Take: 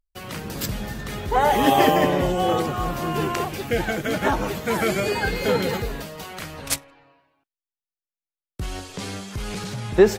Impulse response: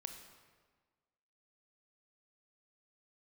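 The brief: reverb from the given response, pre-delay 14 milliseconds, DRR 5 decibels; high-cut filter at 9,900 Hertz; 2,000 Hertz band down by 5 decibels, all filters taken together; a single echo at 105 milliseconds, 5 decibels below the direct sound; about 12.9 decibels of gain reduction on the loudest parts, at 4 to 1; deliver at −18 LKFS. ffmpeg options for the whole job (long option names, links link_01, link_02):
-filter_complex "[0:a]lowpass=9900,equalizer=frequency=2000:width_type=o:gain=-6.5,acompressor=threshold=-25dB:ratio=4,aecho=1:1:105:0.562,asplit=2[link_01][link_02];[1:a]atrim=start_sample=2205,adelay=14[link_03];[link_02][link_03]afir=irnorm=-1:irlink=0,volume=-2dB[link_04];[link_01][link_04]amix=inputs=2:normalize=0,volume=10dB"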